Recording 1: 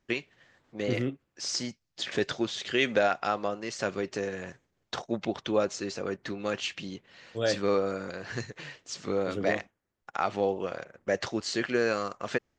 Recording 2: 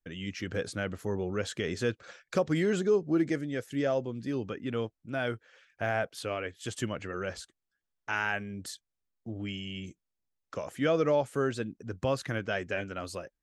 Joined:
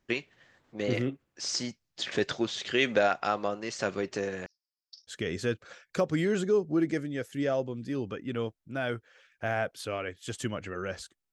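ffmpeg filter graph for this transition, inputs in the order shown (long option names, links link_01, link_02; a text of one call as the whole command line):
ffmpeg -i cue0.wav -i cue1.wav -filter_complex "[0:a]asettb=1/sr,asplit=3[link_01][link_02][link_03];[link_01]atrim=end=4.464[link_04];[link_02]atrim=start=4.46:end=5.15,asetpts=PTS-STARTPTS,afade=type=in:duration=0.004:curve=qsin,afade=type=out:start_time=0.686:duration=0.004:curve=qsin,asuperpass=centerf=5000:order=4:qfactor=6.7[link_05];[link_03]atrim=start=5.146[link_06];[link_04][link_05]acrossfade=duration=0.004:curve1=hsin:curve2=qsin[link_07];[link_07][link_06]acrossfade=duration=0.004:curve1=qsin:curve2=hsin,apad=whole_dur=11.32,atrim=end=11.32,atrim=end=5.15,asetpts=PTS-STARTPTS[link_08];[1:a]atrim=start=1.45:end=7.7,asetpts=PTS-STARTPTS[link_09];[link_08][link_09]acrossfade=duration=0.08:curve1=tri:curve2=tri" out.wav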